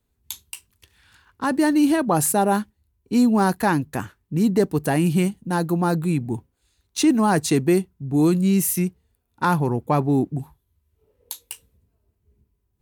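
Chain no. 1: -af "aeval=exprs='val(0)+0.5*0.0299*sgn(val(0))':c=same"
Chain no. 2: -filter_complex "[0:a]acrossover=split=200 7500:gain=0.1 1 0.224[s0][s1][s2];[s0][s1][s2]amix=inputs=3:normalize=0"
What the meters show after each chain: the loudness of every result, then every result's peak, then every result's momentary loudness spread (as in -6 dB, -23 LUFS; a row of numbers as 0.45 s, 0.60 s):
-20.5 LUFS, -23.5 LUFS; -7.0 dBFS, -8.0 dBFS; 20 LU, 19 LU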